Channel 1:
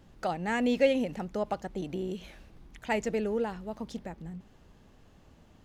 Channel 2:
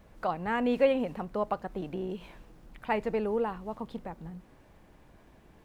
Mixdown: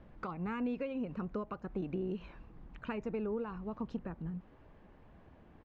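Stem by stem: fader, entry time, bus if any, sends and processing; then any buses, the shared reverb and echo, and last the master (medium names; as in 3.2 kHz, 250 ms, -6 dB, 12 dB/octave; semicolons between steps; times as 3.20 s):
-2.0 dB, 0.00 s, no send, reverb removal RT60 0.56 s; compression 3:1, threshold -36 dBFS, peak gain reduction 13 dB
-4.0 dB, 1.1 ms, no send, compression, threshold -32 dBFS, peak gain reduction 13 dB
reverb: none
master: low-pass 2.2 kHz 12 dB/octave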